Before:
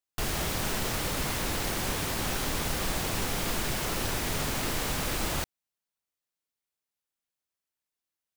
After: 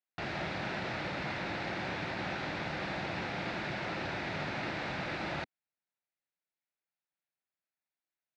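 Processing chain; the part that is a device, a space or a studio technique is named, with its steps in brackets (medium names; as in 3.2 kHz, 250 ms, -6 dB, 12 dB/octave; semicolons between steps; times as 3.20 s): kitchen radio (cabinet simulation 160–3500 Hz, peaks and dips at 250 Hz -7 dB, 440 Hz -9 dB, 1.1 kHz -8 dB, 3.1 kHz -9 dB)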